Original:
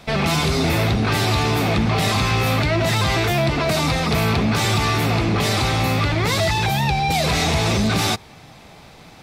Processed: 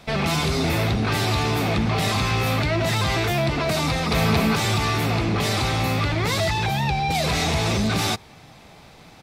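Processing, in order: 3.89–4.33 echo throw 0.22 s, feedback 15%, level -1.5 dB; 6.5–7.15 high shelf 7600 Hz -6.5 dB; gain -3 dB

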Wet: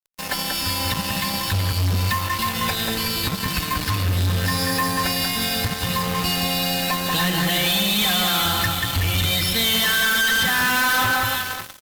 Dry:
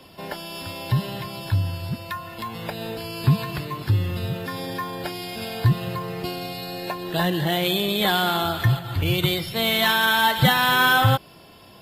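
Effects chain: in parallel at -1.5 dB: vocal rider within 3 dB; on the sum: bit-crush 8-bit; low shelf 170 Hz +8.5 dB; resonator 92 Hz, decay 1.9 s, mix 70%; compressor 6:1, threshold -23 dBFS, peak gain reduction 10.5 dB; passive tone stack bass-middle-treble 5-5-5; notch 3300 Hz, Q 16; comb 3.9 ms, depth 95%; on a send: echo with dull and thin repeats by turns 0.187 s, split 1800 Hz, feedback 54%, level -3 dB; on the sum: fuzz box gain 44 dB, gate -48 dBFS; gain -4 dB

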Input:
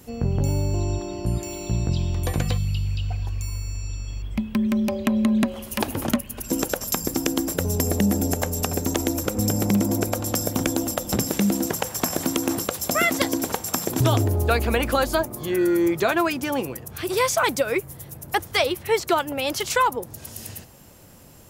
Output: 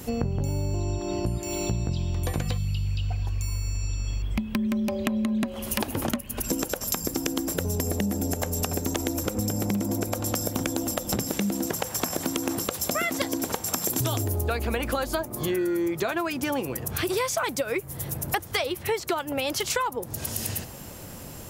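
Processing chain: 13.84–14.41 high shelf 4500 Hz +11.5 dB; compressor 6:1, threshold -33 dBFS, peak gain reduction 17.5 dB; gain +8 dB

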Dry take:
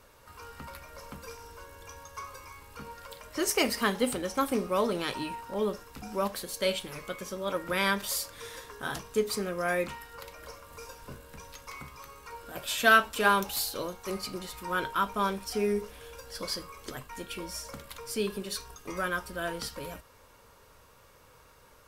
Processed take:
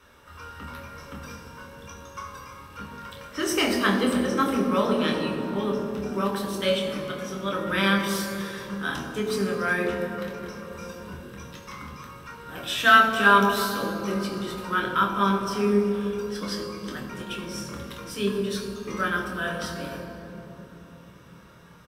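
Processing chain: doubler 25 ms -6.5 dB; reverb RT60 3.4 s, pre-delay 9 ms, DRR 2 dB; gain -6.5 dB

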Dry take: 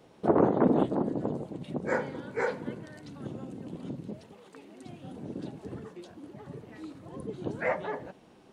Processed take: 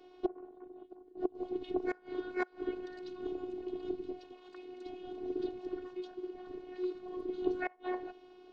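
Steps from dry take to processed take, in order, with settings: flipped gate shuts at -20 dBFS, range -29 dB; speaker cabinet 240–4800 Hz, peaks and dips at 310 Hz +8 dB, 510 Hz -7 dB, 1100 Hz -4 dB, 1900 Hz -7 dB; robotiser 365 Hz; gain +2.5 dB

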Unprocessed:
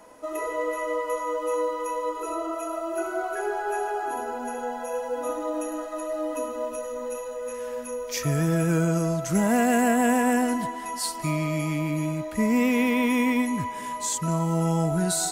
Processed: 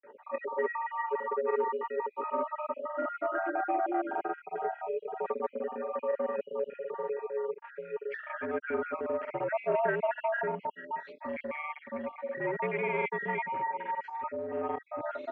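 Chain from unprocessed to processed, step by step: random spectral dropouts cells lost 52%; grains 0.1 s, grains 20/s, spray 36 ms, pitch spread up and down by 0 st; in parallel at -11 dB: wavefolder -26 dBFS; on the sum: mistuned SSB -69 Hz 420–2400 Hz

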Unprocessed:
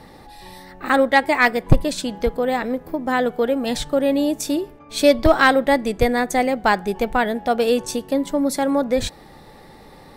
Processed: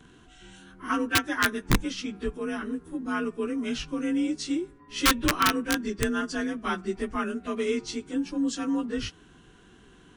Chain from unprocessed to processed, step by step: inharmonic rescaling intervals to 90%; wrapped overs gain 6.5 dB; band shelf 650 Hz -13.5 dB 1 oct; gain -5 dB

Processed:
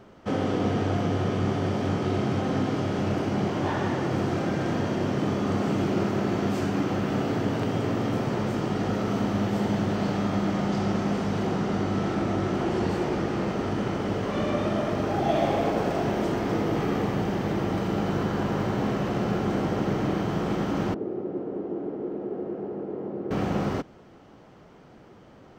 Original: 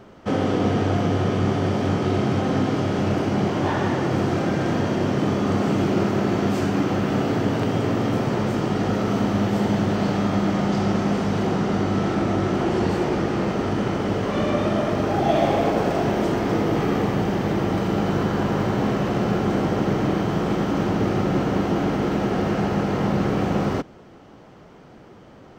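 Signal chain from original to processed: 20.94–23.31 band-pass 390 Hz, Q 2.5; gain -4.5 dB

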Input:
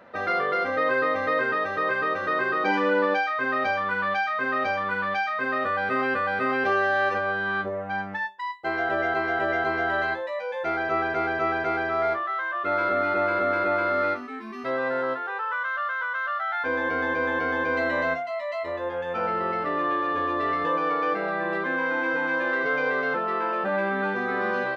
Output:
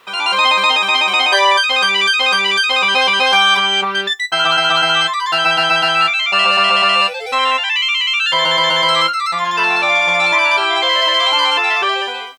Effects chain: ending faded out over 1.34 s; AGC gain up to 10 dB; speed mistake 7.5 ips tape played at 15 ips; requantised 10-bit, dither none; gain +2 dB

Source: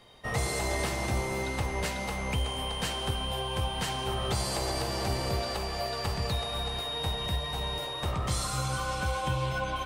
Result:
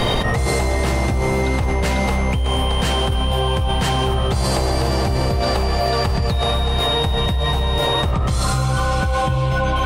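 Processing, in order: tilt -1.5 dB/oct; fast leveller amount 100%; gain +3 dB

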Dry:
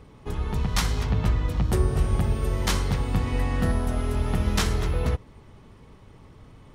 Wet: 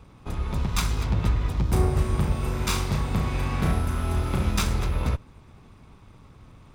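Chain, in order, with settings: minimum comb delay 0.81 ms; 1.69–4.51 flutter echo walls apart 6 m, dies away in 0.37 s

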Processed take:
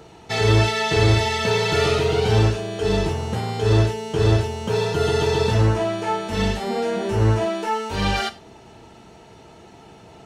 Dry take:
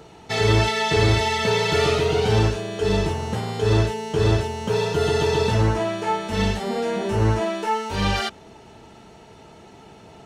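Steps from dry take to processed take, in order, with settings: non-linear reverb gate 0.13 s falling, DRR 10.5 dB

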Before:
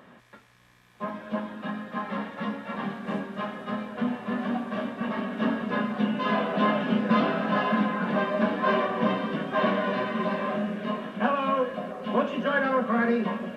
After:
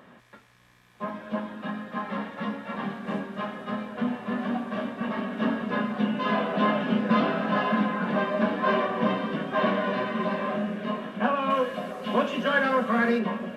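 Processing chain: 11.5–13.19 high shelf 2800 Hz +10 dB

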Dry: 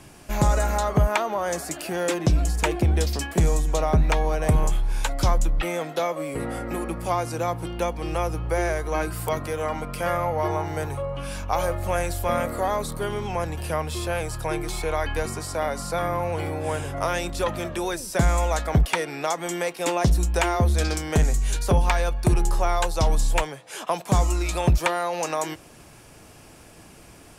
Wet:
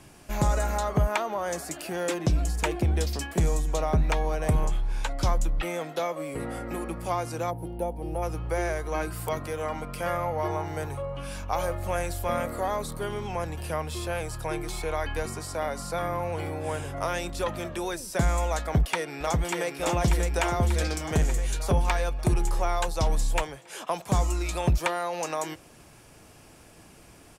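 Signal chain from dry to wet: 4.65–5.23 high shelf 9300 Hz -12 dB; 7.51–8.22 spectral gain 990–8900 Hz -15 dB; 18.61–19.71 echo throw 0.59 s, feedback 65%, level -4 dB; gain -4 dB

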